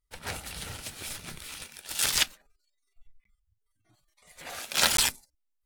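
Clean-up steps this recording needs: interpolate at 3.24/4.97 s, 13 ms

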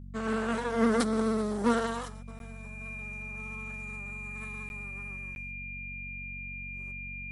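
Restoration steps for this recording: de-hum 46.8 Hz, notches 5; band-stop 2.4 kHz, Q 30; interpolate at 2.39/4.69/5.35 s, 11 ms

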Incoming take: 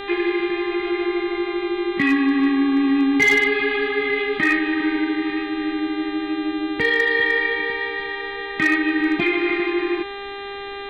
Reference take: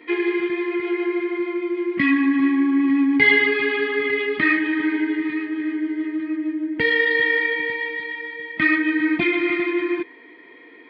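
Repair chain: clip repair -10.5 dBFS; de-hum 399.7 Hz, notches 10; expander -22 dBFS, range -21 dB

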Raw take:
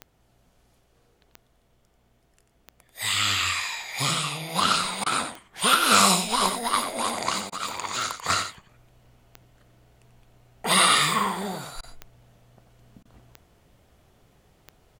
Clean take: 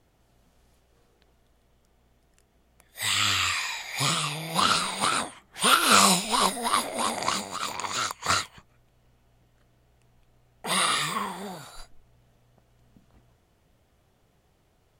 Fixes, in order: de-click; interpolate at 5.04/7.50/11.81/13.03 s, 21 ms; inverse comb 90 ms -9 dB; trim 0 dB, from 8.69 s -5.5 dB

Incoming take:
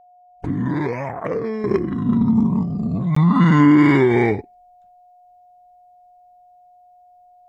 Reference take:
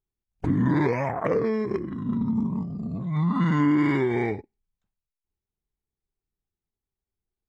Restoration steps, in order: band-stop 720 Hz, Q 30; interpolate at 3.15 s, 14 ms; trim 0 dB, from 1.64 s -9 dB

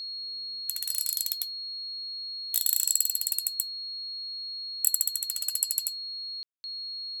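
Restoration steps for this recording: clip repair -7.5 dBFS; band-stop 4.3 kHz, Q 30; room tone fill 6.43–6.64 s

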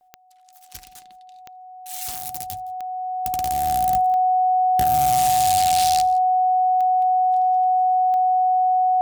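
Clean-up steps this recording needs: de-click; band-stop 740 Hz, Q 30; inverse comb 166 ms -23 dB

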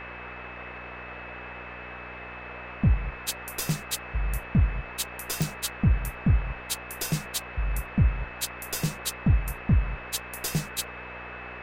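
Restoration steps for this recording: de-click; de-hum 60.9 Hz, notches 10; band-stop 2.6 kHz, Q 30; noise print and reduce 30 dB

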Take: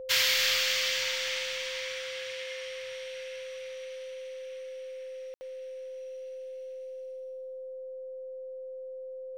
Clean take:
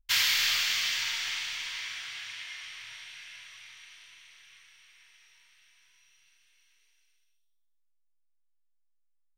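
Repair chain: band-stop 520 Hz, Q 30; room tone fill 5.34–5.41 s; inverse comb 280 ms -13.5 dB

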